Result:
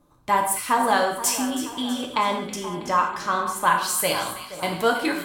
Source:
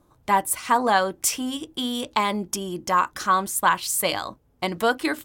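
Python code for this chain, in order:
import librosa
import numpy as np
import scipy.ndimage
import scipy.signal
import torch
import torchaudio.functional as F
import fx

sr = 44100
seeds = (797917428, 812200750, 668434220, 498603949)

y = fx.lowpass(x, sr, hz=4000.0, slope=6, at=(1.39, 3.75))
y = fx.echo_split(y, sr, split_hz=1900.0, low_ms=477, high_ms=323, feedback_pct=52, wet_db=-13)
y = fx.rev_gated(y, sr, seeds[0], gate_ms=220, shape='falling', drr_db=1.0)
y = y * 10.0 ** (-2.0 / 20.0)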